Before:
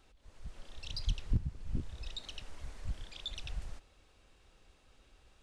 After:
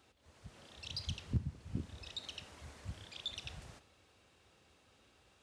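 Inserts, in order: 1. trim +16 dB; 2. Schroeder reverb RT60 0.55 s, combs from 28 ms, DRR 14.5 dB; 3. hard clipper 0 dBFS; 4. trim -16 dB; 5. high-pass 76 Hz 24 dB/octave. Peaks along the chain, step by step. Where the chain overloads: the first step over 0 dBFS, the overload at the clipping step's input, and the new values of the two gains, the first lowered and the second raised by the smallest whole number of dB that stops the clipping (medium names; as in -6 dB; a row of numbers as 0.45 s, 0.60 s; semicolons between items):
-3.5 dBFS, -3.5 dBFS, -3.5 dBFS, -19.5 dBFS, -22.0 dBFS; nothing clips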